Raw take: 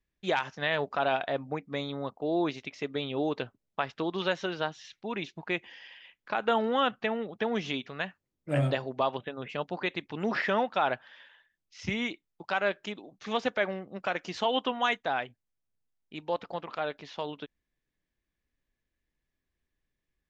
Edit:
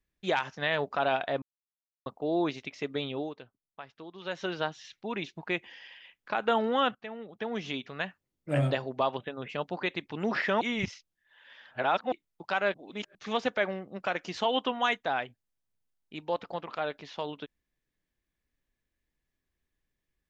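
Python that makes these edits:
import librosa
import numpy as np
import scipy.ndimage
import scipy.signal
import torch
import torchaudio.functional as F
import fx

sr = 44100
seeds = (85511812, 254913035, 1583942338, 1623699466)

y = fx.edit(x, sr, fx.silence(start_s=1.42, length_s=0.64),
    fx.fade_down_up(start_s=3.07, length_s=1.42, db=-14.0, fade_s=0.28),
    fx.fade_in_from(start_s=6.95, length_s=1.06, floor_db=-14.5),
    fx.reverse_span(start_s=10.61, length_s=1.51),
    fx.reverse_span(start_s=12.74, length_s=0.41), tone=tone)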